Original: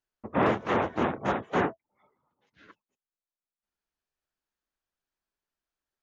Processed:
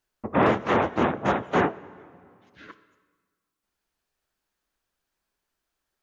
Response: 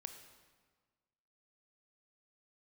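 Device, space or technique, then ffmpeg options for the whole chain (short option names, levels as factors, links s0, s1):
ducked reverb: -filter_complex "[0:a]asplit=3[s0][s1][s2];[1:a]atrim=start_sample=2205[s3];[s1][s3]afir=irnorm=-1:irlink=0[s4];[s2]apad=whole_len=265590[s5];[s4][s5]sidechaincompress=threshold=0.0141:ratio=3:attack=11:release=739,volume=2.11[s6];[s0][s6]amix=inputs=2:normalize=0,volume=1.26"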